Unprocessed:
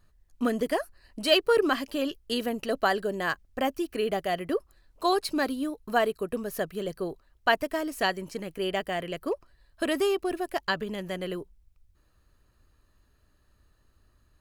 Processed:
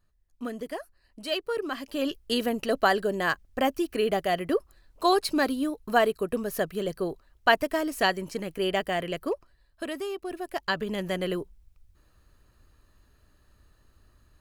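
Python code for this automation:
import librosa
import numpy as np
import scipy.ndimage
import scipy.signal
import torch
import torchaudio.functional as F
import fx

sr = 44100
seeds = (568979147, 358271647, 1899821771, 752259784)

y = fx.gain(x, sr, db=fx.line((1.68, -8.0), (2.1, 2.5), (9.14, 2.5), (10.06, -8.5), (11.0, 4.0)))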